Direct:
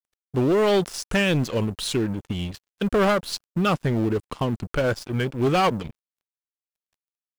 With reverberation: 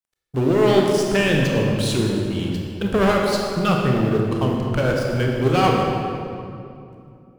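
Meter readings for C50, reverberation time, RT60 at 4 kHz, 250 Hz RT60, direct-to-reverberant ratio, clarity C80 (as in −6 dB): 0.5 dB, 2.6 s, 1.7 s, 3.3 s, −1.0 dB, 2.0 dB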